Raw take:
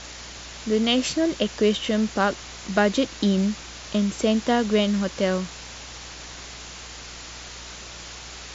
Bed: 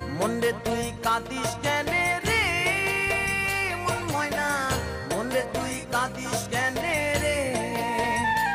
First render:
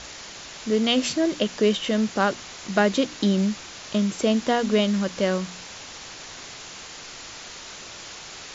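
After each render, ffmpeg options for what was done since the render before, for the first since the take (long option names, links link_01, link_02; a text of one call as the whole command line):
ffmpeg -i in.wav -af "bandreject=frequency=60:width_type=h:width=4,bandreject=frequency=120:width_type=h:width=4,bandreject=frequency=180:width_type=h:width=4,bandreject=frequency=240:width_type=h:width=4,bandreject=frequency=300:width_type=h:width=4" out.wav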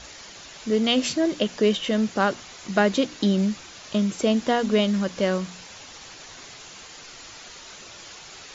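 ffmpeg -i in.wav -af "afftdn=noise_reduction=6:noise_floor=-41" out.wav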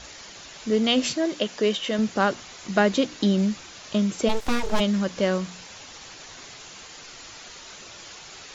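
ffmpeg -i in.wav -filter_complex "[0:a]asettb=1/sr,asplit=3[link_01][link_02][link_03];[link_01]atrim=end=1.134[link_04];[link_02]atrim=start=1.13:end=1.99,asetpts=PTS-STARTPTS,afade=type=in:duration=0.004:curve=qsin,afade=type=out:start_time=0.856:duration=0.004:curve=qsin,lowshelf=frequency=200:gain=-10.5[link_05];[link_03]atrim=start=1.986[link_06];[link_04][link_05]acrossfade=duration=0.004:curve1=hsin:curve2=qsin[link_07];[link_07][link_06]acrossfade=duration=0.004:curve1=qsin:curve2=hsin,asplit=3[link_08][link_09][link_10];[link_08]afade=type=out:start_time=4.28:duration=0.02[link_11];[link_09]aeval=exprs='abs(val(0))':channel_layout=same,afade=type=in:start_time=4.28:duration=0.02,afade=type=out:start_time=4.79:duration=0.02[link_12];[link_10]afade=type=in:start_time=4.79:duration=0.02[link_13];[link_11][link_12][link_13]amix=inputs=3:normalize=0" out.wav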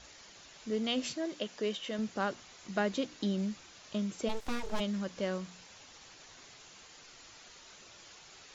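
ffmpeg -i in.wav -af "volume=-11.5dB" out.wav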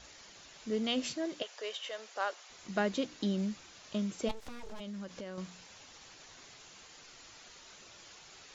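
ffmpeg -i in.wav -filter_complex "[0:a]asettb=1/sr,asplit=3[link_01][link_02][link_03];[link_01]atrim=end=1.424[link_04];[link_02]atrim=start=1.42:end=2.5,asetpts=PTS-STARTPTS,afade=type=in:duration=0.004:curve=qsin,afade=type=out:start_time=1.076:duration=0.004:curve=qsin,highpass=frequency=510:width=0.5412,highpass=frequency=510:width=1.3066[link_05];[link_03]atrim=start=2.496[link_06];[link_04][link_05]acrossfade=duration=0.004:curve1=hsin:curve2=qsin[link_07];[link_07][link_06]acrossfade=duration=0.004:curve1=qsin:curve2=hsin,asettb=1/sr,asplit=3[link_08][link_09][link_10];[link_08]atrim=end=4.314[link_11];[link_09]atrim=start=4.31:end=5.38,asetpts=PTS-STARTPTS,afade=type=in:duration=0.004:curve=qsin,afade=type=out:start_time=1.066:duration=0.004:curve=qsin,acompressor=threshold=-39dB:ratio=10:attack=3.2:release=140:knee=1:detection=peak[link_12];[link_10]atrim=start=5.376[link_13];[link_11][link_12]acrossfade=duration=0.004:curve1=hsin:curve2=qsin[link_14];[link_14][link_13]acrossfade=duration=0.004:curve1=qsin:curve2=hsin" out.wav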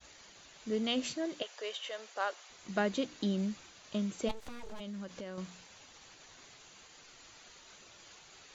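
ffmpeg -i in.wav -af "agate=range=-33dB:threshold=-52dB:ratio=3:detection=peak,bandreject=frequency=5300:width=13" out.wav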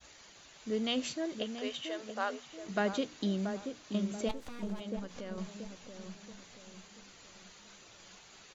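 ffmpeg -i in.wav -filter_complex "[0:a]asplit=2[link_01][link_02];[link_02]adelay=681,lowpass=frequency=920:poles=1,volume=-6dB,asplit=2[link_03][link_04];[link_04]adelay=681,lowpass=frequency=920:poles=1,volume=0.47,asplit=2[link_05][link_06];[link_06]adelay=681,lowpass=frequency=920:poles=1,volume=0.47,asplit=2[link_07][link_08];[link_08]adelay=681,lowpass=frequency=920:poles=1,volume=0.47,asplit=2[link_09][link_10];[link_10]adelay=681,lowpass=frequency=920:poles=1,volume=0.47,asplit=2[link_11][link_12];[link_12]adelay=681,lowpass=frequency=920:poles=1,volume=0.47[link_13];[link_01][link_03][link_05][link_07][link_09][link_11][link_13]amix=inputs=7:normalize=0" out.wav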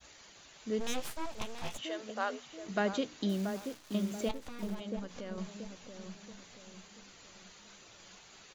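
ffmpeg -i in.wav -filter_complex "[0:a]asplit=3[link_01][link_02][link_03];[link_01]afade=type=out:start_time=0.79:duration=0.02[link_04];[link_02]aeval=exprs='abs(val(0))':channel_layout=same,afade=type=in:start_time=0.79:duration=0.02,afade=type=out:start_time=1.77:duration=0.02[link_05];[link_03]afade=type=in:start_time=1.77:duration=0.02[link_06];[link_04][link_05][link_06]amix=inputs=3:normalize=0,asettb=1/sr,asplit=3[link_07][link_08][link_09];[link_07]atrim=end=3.294[link_10];[link_08]atrim=start=3.29:end=4.75,asetpts=PTS-STARTPTS,afade=type=in:duration=0.004:curve=qsin,afade=type=out:start_time=1.456:duration=0.004:curve=qsin,acrusher=bits=9:dc=4:mix=0:aa=0.000001[link_11];[link_09]atrim=start=4.746[link_12];[link_10][link_11]acrossfade=duration=0.004:curve1=hsin:curve2=qsin[link_13];[link_13][link_12]acrossfade=duration=0.004:curve1=qsin:curve2=hsin" out.wav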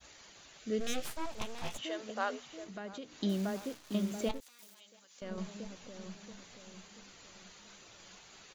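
ffmpeg -i in.wav -filter_complex "[0:a]asettb=1/sr,asplit=3[link_01][link_02][link_03];[link_01]atrim=end=0.594[link_04];[link_02]atrim=start=0.59:end=1.06,asetpts=PTS-STARTPTS,afade=type=in:duration=0.004:curve=qsin,afade=type=out:start_time=0.466:duration=0.004:curve=qsin,asuperstop=centerf=950:order=4:qfactor=2.5[link_05];[link_03]atrim=start=1.056[link_06];[link_04][link_05]acrossfade=duration=0.004:curve1=hsin:curve2=qsin[link_07];[link_07][link_06]acrossfade=duration=0.004:curve1=qsin:curve2=hsin,asettb=1/sr,asplit=3[link_08][link_09][link_10];[link_08]atrim=end=2.644[link_11];[link_09]atrim=start=2.64:end=3.23,asetpts=PTS-STARTPTS,afade=type=in:duration=0.004:curve=qsin,afade=type=out:start_time=0.586:duration=0.004:curve=qsin,acompressor=threshold=-50dB:ratio=2:attack=3.2:release=140:knee=1:detection=peak[link_12];[link_10]atrim=start=3.226[link_13];[link_11][link_12]acrossfade=duration=0.004:curve1=hsin:curve2=qsin[link_14];[link_14][link_13]acrossfade=duration=0.004:curve1=qsin:curve2=hsin,asettb=1/sr,asplit=3[link_15][link_16][link_17];[link_15]atrim=end=4.404[link_18];[link_16]atrim=start=4.4:end=5.22,asetpts=PTS-STARTPTS,afade=type=in:duration=0.004:curve=qsin,afade=type=out:start_time=0.816:duration=0.004:curve=qsin,aderivative[link_19];[link_17]atrim=start=5.216[link_20];[link_18][link_19]acrossfade=duration=0.004:curve1=hsin:curve2=qsin[link_21];[link_21][link_20]acrossfade=duration=0.004:curve1=qsin:curve2=hsin" out.wav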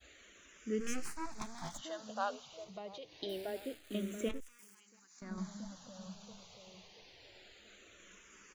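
ffmpeg -i in.wav -filter_complex "[0:a]asplit=2[link_01][link_02];[link_02]afreqshift=-0.26[link_03];[link_01][link_03]amix=inputs=2:normalize=1" out.wav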